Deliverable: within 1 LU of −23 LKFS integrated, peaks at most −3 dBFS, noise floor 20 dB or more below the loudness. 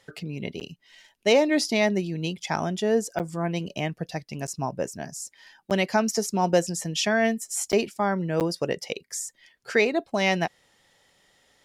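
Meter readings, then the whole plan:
number of dropouts 6; longest dropout 8.5 ms; integrated loudness −26.0 LKFS; sample peak −9.0 dBFS; target loudness −23.0 LKFS
→ repair the gap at 0:00.60/0:03.19/0:04.47/0:05.70/0:07.72/0:08.40, 8.5 ms
level +3 dB

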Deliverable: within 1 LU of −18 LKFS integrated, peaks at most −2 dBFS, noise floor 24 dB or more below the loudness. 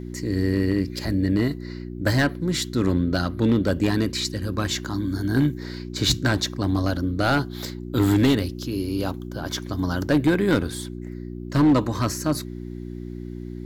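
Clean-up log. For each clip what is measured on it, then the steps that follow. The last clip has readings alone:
share of clipped samples 0.7%; peaks flattened at −12.5 dBFS; mains hum 60 Hz; hum harmonics up to 360 Hz; level of the hum −32 dBFS; integrated loudness −23.5 LKFS; sample peak −12.5 dBFS; target loudness −18.0 LKFS
→ clipped peaks rebuilt −12.5 dBFS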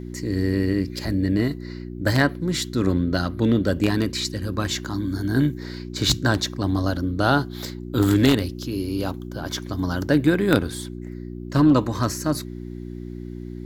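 share of clipped samples 0.0%; mains hum 60 Hz; hum harmonics up to 360 Hz; level of the hum −32 dBFS
→ hum removal 60 Hz, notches 6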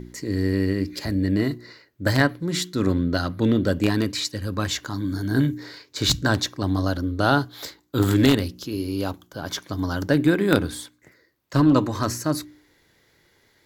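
mains hum none found; integrated loudness −23.5 LKFS; sample peak −3.0 dBFS; target loudness −18.0 LKFS
→ level +5.5 dB
brickwall limiter −2 dBFS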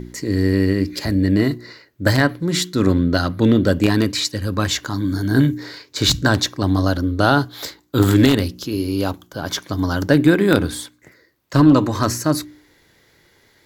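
integrated loudness −18.5 LKFS; sample peak −2.0 dBFS; background noise floor −57 dBFS

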